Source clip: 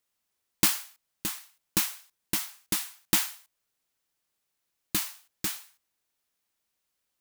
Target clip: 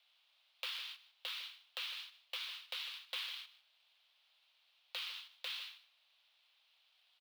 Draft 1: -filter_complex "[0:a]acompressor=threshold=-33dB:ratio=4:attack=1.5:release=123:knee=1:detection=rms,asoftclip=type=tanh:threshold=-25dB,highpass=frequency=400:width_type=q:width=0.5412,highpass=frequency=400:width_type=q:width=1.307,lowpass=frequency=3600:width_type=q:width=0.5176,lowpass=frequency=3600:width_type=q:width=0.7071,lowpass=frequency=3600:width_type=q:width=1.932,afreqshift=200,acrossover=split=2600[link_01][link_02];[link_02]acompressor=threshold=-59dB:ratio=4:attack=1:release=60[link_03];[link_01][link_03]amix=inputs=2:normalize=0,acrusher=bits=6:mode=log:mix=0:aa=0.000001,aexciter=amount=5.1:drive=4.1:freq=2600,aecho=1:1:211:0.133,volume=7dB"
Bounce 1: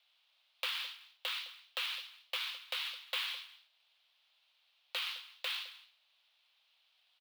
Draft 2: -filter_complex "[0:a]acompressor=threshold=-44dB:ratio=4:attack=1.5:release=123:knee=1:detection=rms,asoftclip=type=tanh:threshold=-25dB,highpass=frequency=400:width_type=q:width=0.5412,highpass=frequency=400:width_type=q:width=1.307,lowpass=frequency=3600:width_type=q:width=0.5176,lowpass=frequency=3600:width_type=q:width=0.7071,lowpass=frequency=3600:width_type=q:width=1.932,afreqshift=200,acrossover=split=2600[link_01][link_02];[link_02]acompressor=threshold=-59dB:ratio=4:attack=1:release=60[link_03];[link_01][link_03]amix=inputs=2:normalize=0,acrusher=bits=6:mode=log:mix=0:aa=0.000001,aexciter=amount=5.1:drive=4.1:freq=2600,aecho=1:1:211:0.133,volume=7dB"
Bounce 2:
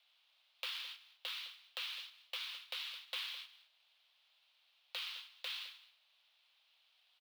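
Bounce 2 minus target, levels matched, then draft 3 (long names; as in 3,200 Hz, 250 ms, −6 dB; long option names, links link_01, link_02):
echo 59 ms late
-filter_complex "[0:a]acompressor=threshold=-44dB:ratio=4:attack=1.5:release=123:knee=1:detection=rms,asoftclip=type=tanh:threshold=-25dB,highpass=frequency=400:width_type=q:width=0.5412,highpass=frequency=400:width_type=q:width=1.307,lowpass=frequency=3600:width_type=q:width=0.5176,lowpass=frequency=3600:width_type=q:width=0.7071,lowpass=frequency=3600:width_type=q:width=1.932,afreqshift=200,acrossover=split=2600[link_01][link_02];[link_02]acompressor=threshold=-59dB:ratio=4:attack=1:release=60[link_03];[link_01][link_03]amix=inputs=2:normalize=0,acrusher=bits=6:mode=log:mix=0:aa=0.000001,aexciter=amount=5.1:drive=4.1:freq=2600,aecho=1:1:152:0.133,volume=7dB"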